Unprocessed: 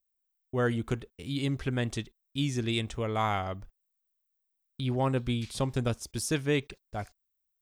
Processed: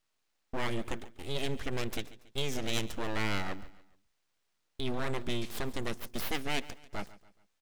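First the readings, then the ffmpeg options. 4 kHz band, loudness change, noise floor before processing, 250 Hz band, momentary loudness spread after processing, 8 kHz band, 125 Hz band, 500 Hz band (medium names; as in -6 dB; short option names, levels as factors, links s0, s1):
0.0 dB, -5.0 dB, -80 dBFS, -6.5 dB, 10 LU, -4.0 dB, -9.5 dB, -5.5 dB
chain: -filter_complex "[0:a]acrossover=split=1300[s0][s1];[s0]alimiter=level_in=1.06:limit=0.0631:level=0:latency=1,volume=0.944[s2];[s2][s1]amix=inputs=2:normalize=0,aeval=exprs='abs(val(0))':c=same,aecho=1:1:141|282|423:0.126|0.0516|0.0212,volume=1.12"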